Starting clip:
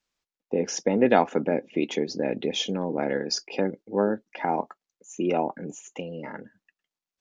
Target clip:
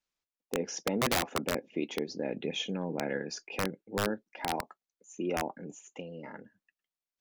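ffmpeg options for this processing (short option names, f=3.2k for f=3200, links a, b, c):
-filter_complex "[0:a]asettb=1/sr,asplit=3[a][b][c];[a]atrim=end=2.344[d];[b]atrim=start=2.34:end=4.14,asetpts=PTS-STARTPTS,afade=t=in:d=0.004:c=qsin,afade=t=out:st=1.796:d=0.004:c=qsin,equalizer=f=160:t=o:w=0.33:g=7,equalizer=f=1.6k:t=o:w=0.33:g=5,equalizer=f=2.5k:t=o:w=0.33:g=6,equalizer=f=5k:t=o:w=0.33:g=-8[e];[c]atrim=start=4.136[f];[d][e]acrossfade=d=0.004:c1=hsin:c2=qsin[g];[g][f]acrossfade=d=0.004:c1=qsin:c2=hsin,aeval=exprs='(mod(4.47*val(0)+1,2)-1)/4.47':c=same,volume=-7.5dB"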